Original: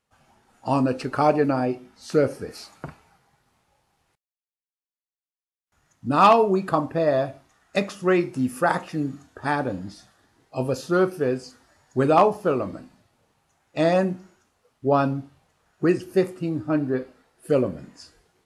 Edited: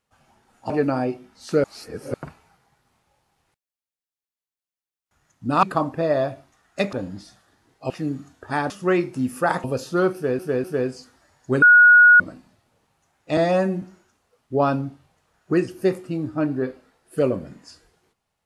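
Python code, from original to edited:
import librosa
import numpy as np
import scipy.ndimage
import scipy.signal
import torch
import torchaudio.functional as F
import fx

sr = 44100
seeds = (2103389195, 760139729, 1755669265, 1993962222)

y = fx.edit(x, sr, fx.cut(start_s=0.7, length_s=0.61),
    fx.reverse_span(start_s=2.25, length_s=0.5),
    fx.cut(start_s=6.24, length_s=0.36),
    fx.swap(start_s=7.9, length_s=0.94, other_s=9.64, other_length_s=0.97),
    fx.repeat(start_s=11.11, length_s=0.25, count=3),
    fx.bleep(start_s=12.09, length_s=0.58, hz=1450.0, db=-7.5),
    fx.stretch_span(start_s=13.84, length_s=0.3, factor=1.5), tone=tone)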